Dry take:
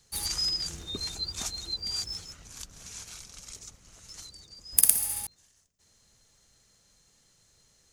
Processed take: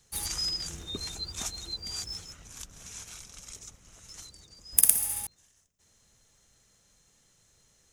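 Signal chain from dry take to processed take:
parametric band 4,500 Hz −7.5 dB 0.23 octaves

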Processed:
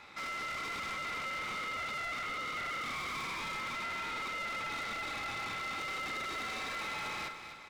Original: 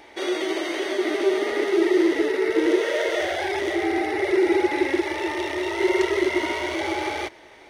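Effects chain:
low-shelf EQ 450 Hz +9 dB
mains-hum notches 60/120/180/240/300/360/420 Hz
gain into a clipping stage and back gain 29.5 dB
ring modulation 1,700 Hz
repeating echo 249 ms, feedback 46%, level −10 dB
level −5.5 dB

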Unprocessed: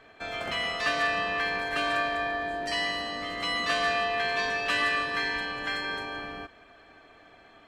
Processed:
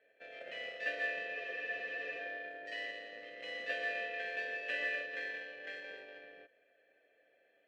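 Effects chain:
harmonic generator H 7 −23 dB, 8 −26 dB, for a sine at −14 dBFS
formant filter e
frozen spectrum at 0:01.36, 0.83 s
level +1 dB

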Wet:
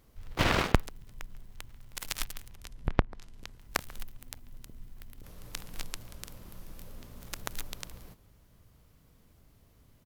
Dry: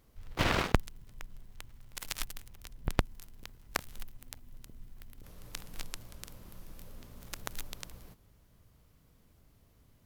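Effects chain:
0:02.51–0:03.59: treble cut that deepens with the level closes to 1,200 Hz, closed at −26.5 dBFS
far-end echo of a speakerphone 140 ms, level −20 dB
level +2.5 dB

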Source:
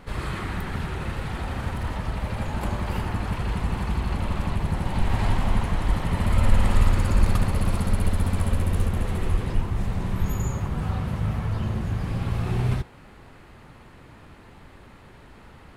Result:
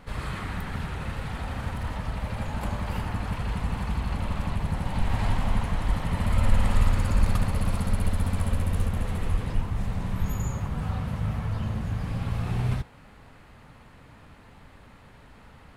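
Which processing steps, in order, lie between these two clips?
parametric band 360 Hz −8.5 dB 0.27 octaves
level −2.5 dB

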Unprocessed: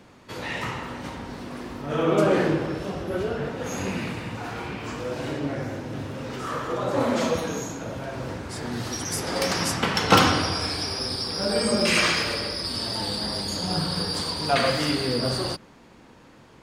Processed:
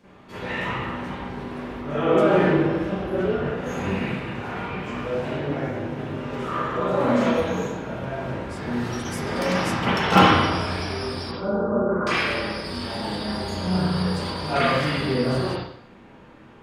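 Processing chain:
0:11.31–0:12.07: Chebyshev low-pass with heavy ripple 1,500 Hz, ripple 3 dB
convolution reverb RT60 0.60 s, pre-delay 33 ms, DRR −11.5 dB
level −9 dB

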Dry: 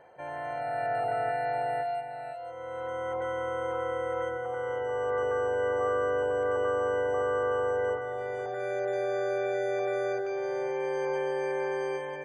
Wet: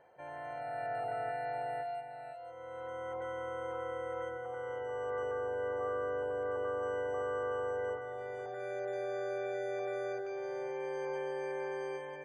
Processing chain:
0:05.31–0:06.83: high-shelf EQ 3,700 Hz −8.5 dB
level −7.5 dB

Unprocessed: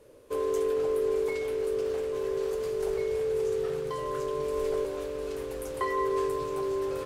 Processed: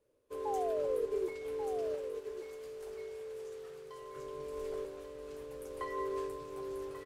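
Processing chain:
0:00.45–0:01.28: sound drawn into the spectrogram fall 360–860 Hz −28 dBFS
0:01.95–0:04.16: low-shelf EQ 490 Hz −9.5 dB
single-tap delay 1,138 ms −7.5 dB
expander for the loud parts 1.5 to 1, over −48 dBFS
level −8 dB

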